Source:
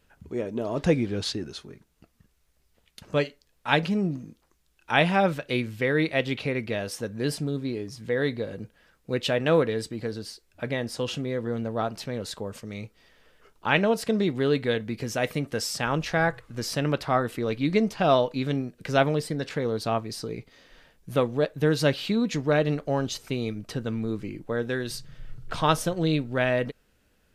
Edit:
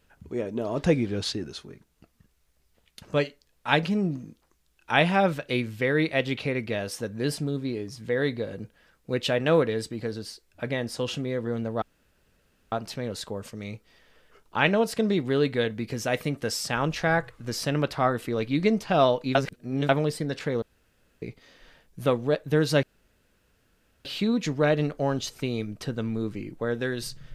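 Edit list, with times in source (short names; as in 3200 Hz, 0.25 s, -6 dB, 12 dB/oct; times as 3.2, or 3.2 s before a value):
11.82 insert room tone 0.90 s
18.45–18.99 reverse
19.72–20.32 room tone
21.93 insert room tone 1.22 s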